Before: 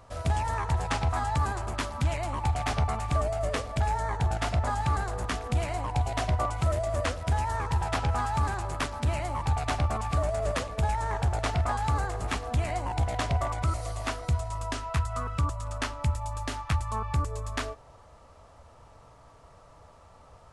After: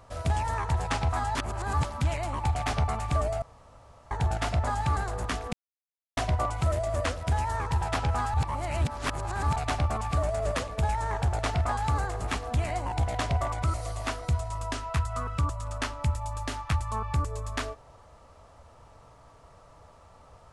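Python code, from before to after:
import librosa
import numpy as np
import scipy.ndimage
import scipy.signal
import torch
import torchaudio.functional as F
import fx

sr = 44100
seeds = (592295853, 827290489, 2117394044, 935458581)

y = fx.edit(x, sr, fx.reverse_span(start_s=1.35, length_s=0.49),
    fx.room_tone_fill(start_s=3.42, length_s=0.69),
    fx.silence(start_s=5.53, length_s=0.64),
    fx.reverse_span(start_s=8.34, length_s=1.22), tone=tone)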